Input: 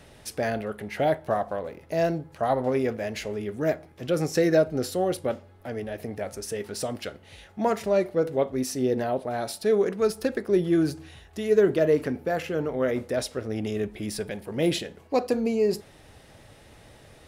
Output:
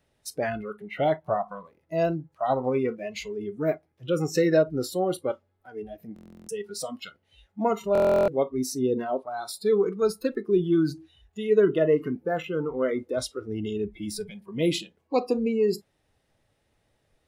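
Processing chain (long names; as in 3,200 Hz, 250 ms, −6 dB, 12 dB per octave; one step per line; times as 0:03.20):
noise reduction from a noise print of the clip's start 20 dB
buffer that repeats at 0:06.14/0:07.93, samples 1,024, times 14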